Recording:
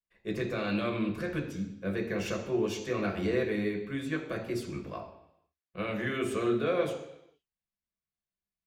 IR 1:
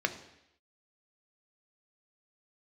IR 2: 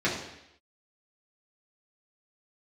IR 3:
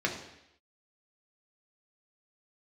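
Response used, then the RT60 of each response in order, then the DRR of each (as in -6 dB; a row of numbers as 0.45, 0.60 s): 3; 0.80, 0.80, 0.80 s; 7.0, -7.5, -0.5 dB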